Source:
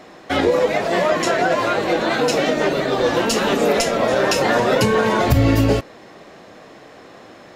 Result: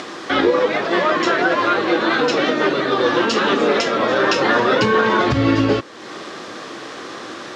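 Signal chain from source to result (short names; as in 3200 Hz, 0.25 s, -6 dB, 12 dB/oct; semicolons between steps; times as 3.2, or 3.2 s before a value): added noise blue -40 dBFS; upward compressor, threshold -20 dBFS; speaker cabinet 130–5600 Hz, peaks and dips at 170 Hz -4 dB, 340 Hz +5 dB, 670 Hz -5 dB, 1200 Hz +7 dB, 1600 Hz +4 dB, 3400 Hz +4 dB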